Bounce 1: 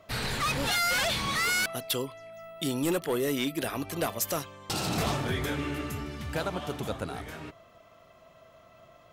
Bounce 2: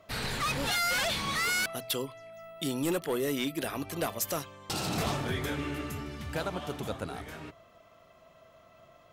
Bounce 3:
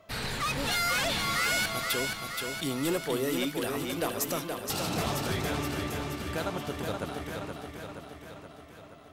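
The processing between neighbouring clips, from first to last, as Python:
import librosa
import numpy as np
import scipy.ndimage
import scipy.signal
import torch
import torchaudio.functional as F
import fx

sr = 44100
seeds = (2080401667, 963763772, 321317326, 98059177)

y1 = fx.hum_notches(x, sr, base_hz=60, count=2)
y1 = F.gain(torch.from_numpy(y1), -2.0).numpy()
y2 = fx.echo_feedback(y1, sr, ms=474, feedback_pct=60, wet_db=-5)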